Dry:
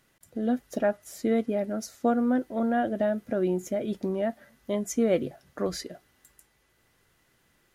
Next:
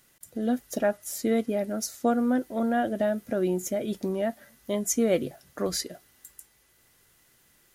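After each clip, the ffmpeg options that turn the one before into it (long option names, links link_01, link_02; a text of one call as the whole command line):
ffmpeg -i in.wav -af "highshelf=frequency=4800:gain=12" out.wav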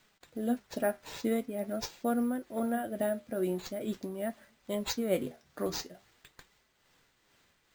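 ffmpeg -i in.wav -af "acrusher=samples=4:mix=1:aa=0.000001,tremolo=f=2.3:d=0.46,flanger=delay=4.6:depth=8.7:regen=69:speed=0.45:shape=sinusoidal" out.wav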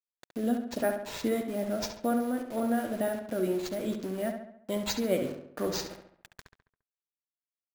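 ffmpeg -i in.wav -filter_complex "[0:a]asplit=2[link_01][link_02];[link_02]acompressor=threshold=-40dB:ratio=6,volume=-2dB[link_03];[link_01][link_03]amix=inputs=2:normalize=0,aeval=exprs='val(0)*gte(abs(val(0)),0.00708)':channel_layout=same,asplit=2[link_04][link_05];[link_05]adelay=69,lowpass=frequency=3500:poles=1,volume=-6.5dB,asplit=2[link_06][link_07];[link_07]adelay=69,lowpass=frequency=3500:poles=1,volume=0.52,asplit=2[link_08][link_09];[link_09]adelay=69,lowpass=frequency=3500:poles=1,volume=0.52,asplit=2[link_10][link_11];[link_11]adelay=69,lowpass=frequency=3500:poles=1,volume=0.52,asplit=2[link_12][link_13];[link_13]adelay=69,lowpass=frequency=3500:poles=1,volume=0.52,asplit=2[link_14][link_15];[link_15]adelay=69,lowpass=frequency=3500:poles=1,volume=0.52[link_16];[link_04][link_06][link_08][link_10][link_12][link_14][link_16]amix=inputs=7:normalize=0" out.wav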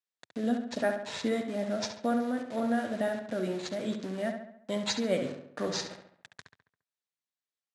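ffmpeg -i in.wav -af "highpass=frequency=100:width=0.5412,highpass=frequency=100:width=1.3066,equalizer=frequency=350:width_type=q:width=4:gain=-6,equalizer=frequency=1800:width_type=q:width=4:gain=4,equalizer=frequency=3800:width_type=q:width=4:gain=4,lowpass=frequency=8400:width=0.5412,lowpass=frequency=8400:width=1.3066" out.wav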